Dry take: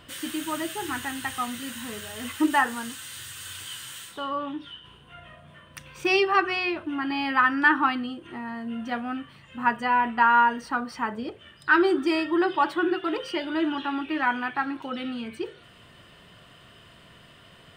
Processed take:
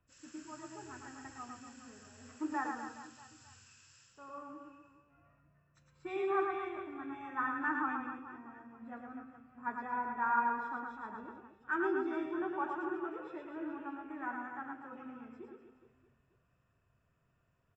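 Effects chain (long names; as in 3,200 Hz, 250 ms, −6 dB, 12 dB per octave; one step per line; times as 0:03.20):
hearing-aid frequency compression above 1,900 Hz 1.5 to 1
flat-topped bell 3,300 Hz −9.5 dB
tuned comb filter 130 Hz, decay 1.8 s, mix 70%
on a send: reverse bouncing-ball delay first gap 110 ms, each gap 1.25×, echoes 5
on the sum: multiband upward and downward expander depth 40%
level −6 dB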